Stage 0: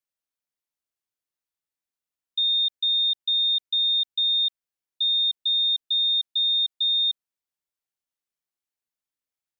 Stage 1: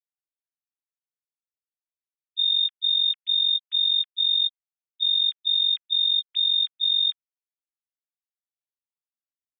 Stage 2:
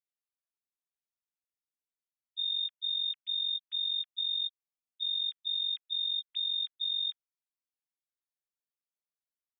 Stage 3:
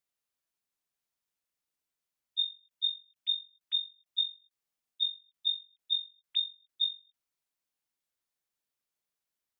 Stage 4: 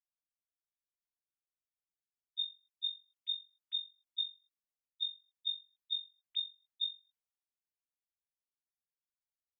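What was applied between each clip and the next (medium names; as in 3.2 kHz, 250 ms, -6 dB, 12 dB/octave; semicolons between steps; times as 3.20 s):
formants replaced by sine waves
peak limiter -19.5 dBFS, peak gain reduction 3.5 dB; trim -7 dB
endings held to a fixed fall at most 210 dB/s; trim +6 dB
three bands expanded up and down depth 40%; trim -7 dB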